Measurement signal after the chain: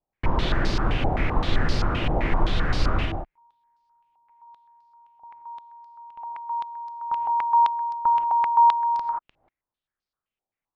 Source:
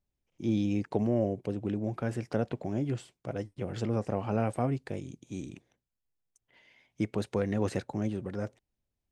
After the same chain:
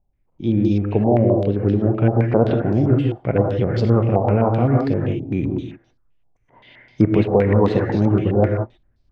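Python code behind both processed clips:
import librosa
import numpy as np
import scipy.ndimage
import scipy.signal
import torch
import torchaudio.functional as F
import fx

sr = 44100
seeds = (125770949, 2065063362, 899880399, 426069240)

y = fx.tilt_eq(x, sr, slope=-2.5)
y = fx.rev_gated(y, sr, seeds[0], gate_ms=200, shape='rising', drr_db=1.5)
y = fx.rider(y, sr, range_db=4, speed_s=0.5)
y = fx.dynamic_eq(y, sr, hz=440.0, q=3.0, threshold_db=-41.0, ratio=4.0, max_db=4)
y = fx.filter_held_lowpass(y, sr, hz=7.7, low_hz=780.0, high_hz=4700.0)
y = y * librosa.db_to_amplitude(6.5)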